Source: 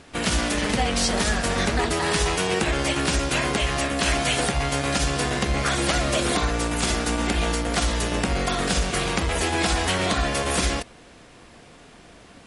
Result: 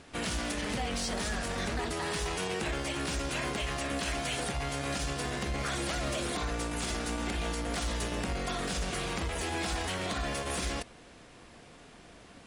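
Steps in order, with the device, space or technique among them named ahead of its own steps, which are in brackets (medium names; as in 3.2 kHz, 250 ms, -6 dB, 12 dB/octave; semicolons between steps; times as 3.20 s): limiter into clipper (peak limiter -19 dBFS, peak gain reduction 7 dB; hard clipper -21.5 dBFS, distortion -24 dB); trim -5 dB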